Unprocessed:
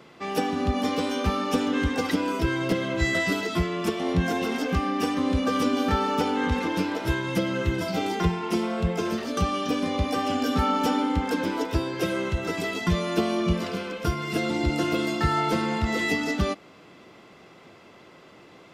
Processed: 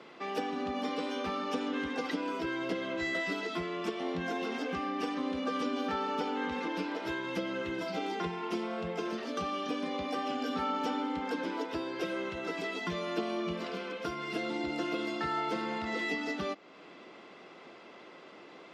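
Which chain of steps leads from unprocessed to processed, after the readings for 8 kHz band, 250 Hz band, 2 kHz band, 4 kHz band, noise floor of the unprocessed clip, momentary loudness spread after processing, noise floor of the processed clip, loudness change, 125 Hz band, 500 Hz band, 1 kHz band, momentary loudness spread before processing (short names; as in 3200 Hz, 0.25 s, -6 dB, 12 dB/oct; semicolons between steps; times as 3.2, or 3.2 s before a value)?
-13.5 dB, -9.5 dB, -7.0 dB, -8.0 dB, -51 dBFS, 10 LU, -52 dBFS, -9.0 dB, -18.5 dB, -7.5 dB, -7.5 dB, 4 LU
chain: three-band isolator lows -22 dB, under 200 Hz, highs -13 dB, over 5500 Hz; compressor 1.5:1, threshold -43 dBFS, peak gain reduction 8.5 dB; MP3 56 kbps 48000 Hz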